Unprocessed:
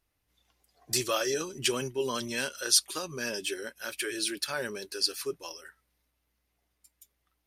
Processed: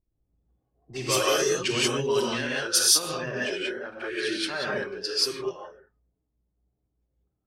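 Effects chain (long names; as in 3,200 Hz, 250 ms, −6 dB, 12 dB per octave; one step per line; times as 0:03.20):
tape wow and flutter 86 cents
reverb whose tail is shaped and stops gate 210 ms rising, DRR −5 dB
low-pass that shuts in the quiet parts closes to 360 Hz, open at −19 dBFS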